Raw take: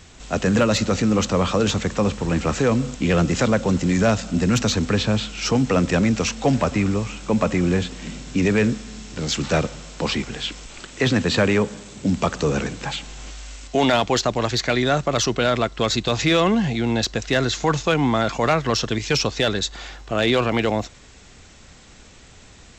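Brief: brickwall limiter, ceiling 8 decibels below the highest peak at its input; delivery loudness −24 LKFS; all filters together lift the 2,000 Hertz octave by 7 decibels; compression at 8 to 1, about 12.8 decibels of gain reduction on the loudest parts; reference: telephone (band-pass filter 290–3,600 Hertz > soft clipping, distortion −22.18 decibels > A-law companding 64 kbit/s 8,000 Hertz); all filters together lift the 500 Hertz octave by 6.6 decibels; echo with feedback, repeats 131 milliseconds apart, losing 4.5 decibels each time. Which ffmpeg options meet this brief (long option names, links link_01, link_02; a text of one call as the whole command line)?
ffmpeg -i in.wav -af "equalizer=frequency=500:width_type=o:gain=8,equalizer=frequency=2000:width_type=o:gain=9,acompressor=threshold=-22dB:ratio=8,alimiter=limit=-17dB:level=0:latency=1,highpass=290,lowpass=3600,aecho=1:1:131|262|393|524|655|786|917|1048|1179:0.596|0.357|0.214|0.129|0.0772|0.0463|0.0278|0.0167|0.01,asoftclip=threshold=-17.5dB,volume=5dB" -ar 8000 -c:a pcm_alaw out.wav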